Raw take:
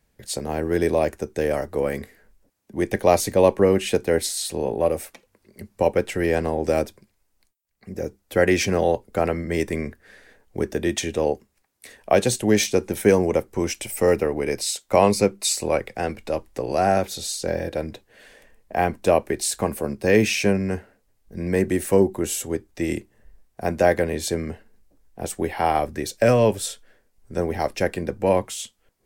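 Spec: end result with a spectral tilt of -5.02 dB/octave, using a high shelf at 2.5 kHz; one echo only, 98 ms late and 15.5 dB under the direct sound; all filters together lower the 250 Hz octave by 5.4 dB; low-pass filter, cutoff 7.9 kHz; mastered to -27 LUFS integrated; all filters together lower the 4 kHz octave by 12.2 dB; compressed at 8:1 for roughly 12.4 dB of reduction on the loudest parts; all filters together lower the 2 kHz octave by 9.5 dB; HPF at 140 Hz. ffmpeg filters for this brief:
-af "highpass=140,lowpass=7900,equalizer=f=250:t=o:g=-7,equalizer=f=2000:t=o:g=-7,highshelf=f=2500:g=-6,equalizer=f=4000:t=o:g=-8,acompressor=threshold=0.0501:ratio=8,aecho=1:1:98:0.168,volume=2.11"

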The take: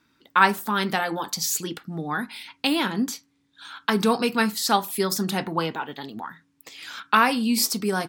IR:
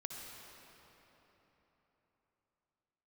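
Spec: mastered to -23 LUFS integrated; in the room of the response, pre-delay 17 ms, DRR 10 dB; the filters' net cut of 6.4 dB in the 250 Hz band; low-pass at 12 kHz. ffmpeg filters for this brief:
-filter_complex "[0:a]lowpass=12000,equalizer=f=250:t=o:g=-8,asplit=2[s0][s1];[1:a]atrim=start_sample=2205,adelay=17[s2];[s1][s2]afir=irnorm=-1:irlink=0,volume=0.376[s3];[s0][s3]amix=inputs=2:normalize=0,volume=1.19"

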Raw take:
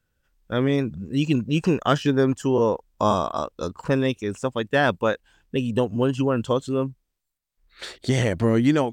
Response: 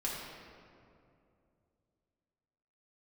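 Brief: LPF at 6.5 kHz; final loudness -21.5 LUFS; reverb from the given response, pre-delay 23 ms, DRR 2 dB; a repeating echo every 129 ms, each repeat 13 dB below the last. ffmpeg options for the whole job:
-filter_complex "[0:a]lowpass=6500,aecho=1:1:129|258|387:0.224|0.0493|0.0108,asplit=2[s0][s1];[1:a]atrim=start_sample=2205,adelay=23[s2];[s1][s2]afir=irnorm=-1:irlink=0,volume=0.501[s3];[s0][s3]amix=inputs=2:normalize=0,volume=0.944"

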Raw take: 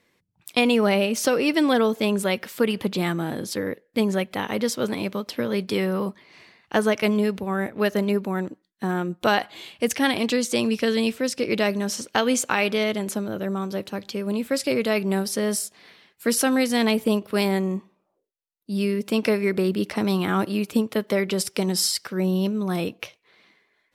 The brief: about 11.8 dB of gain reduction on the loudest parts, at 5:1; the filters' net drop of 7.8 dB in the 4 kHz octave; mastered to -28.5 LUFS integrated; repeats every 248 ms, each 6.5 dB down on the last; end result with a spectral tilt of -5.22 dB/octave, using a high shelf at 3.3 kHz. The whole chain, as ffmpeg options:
-af "highshelf=f=3300:g=-4.5,equalizer=f=4000:t=o:g=-7.5,acompressor=threshold=0.0316:ratio=5,aecho=1:1:248|496|744|992|1240|1488:0.473|0.222|0.105|0.0491|0.0231|0.0109,volume=1.68"

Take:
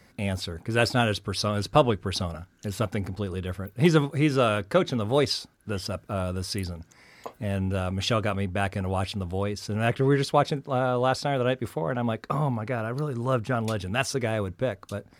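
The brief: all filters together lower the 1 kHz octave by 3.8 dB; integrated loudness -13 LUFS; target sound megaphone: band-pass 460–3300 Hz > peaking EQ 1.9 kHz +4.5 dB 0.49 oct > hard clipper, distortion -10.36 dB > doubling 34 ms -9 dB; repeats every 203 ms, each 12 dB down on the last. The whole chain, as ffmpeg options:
-filter_complex "[0:a]highpass=460,lowpass=3300,equalizer=f=1000:t=o:g=-5.5,equalizer=f=1900:t=o:w=0.49:g=4.5,aecho=1:1:203|406|609:0.251|0.0628|0.0157,asoftclip=type=hard:threshold=0.0708,asplit=2[s0][s1];[s1]adelay=34,volume=0.355[s2];[s0][s2]amix=inputs=2:normalize=0,volume=9.44"

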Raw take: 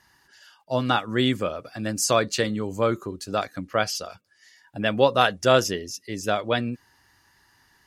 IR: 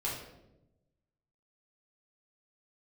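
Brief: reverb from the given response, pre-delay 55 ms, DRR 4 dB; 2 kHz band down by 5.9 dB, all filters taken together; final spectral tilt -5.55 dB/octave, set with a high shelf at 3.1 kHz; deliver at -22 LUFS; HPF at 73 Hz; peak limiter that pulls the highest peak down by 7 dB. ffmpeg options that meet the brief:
-filter_complex "[0:a]highpass=73,equalizer=f=2000:t=o:g=-6,highshelf=f=3100:g=-7.5,alimiter=limit=0.211:level=0:latency=1,asplit=2[s0][s1];[1:a]atrim=start_sample=2205,adelay=55[s2];[s1][s2]afir=irnorm=-1:irlink=0,volume=0.376[s3];[s0][s3]amix=inputs=2:normalize=0,volume=1.68"

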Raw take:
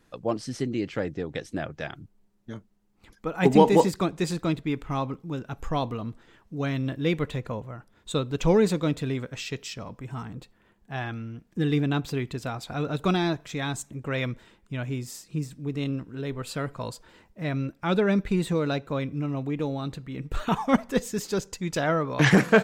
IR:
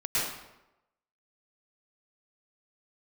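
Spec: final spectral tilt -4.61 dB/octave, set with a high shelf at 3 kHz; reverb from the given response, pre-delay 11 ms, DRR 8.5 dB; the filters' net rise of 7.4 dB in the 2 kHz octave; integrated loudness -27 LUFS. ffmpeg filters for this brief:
-filter_complex "[0:a]equalizer=f=2000:t=o:g=6.5,highshelf=f=3000:g=8.5,asplit=2[s0][s1];[1:a]atrim=start_sample=2205,adelay=11[s2];[s1][s2]afir=irnorm=-1:irlink=0,volume=0.119[s3];[s0][s3]amix=inputs=2:normalize=0,volume=0.794"

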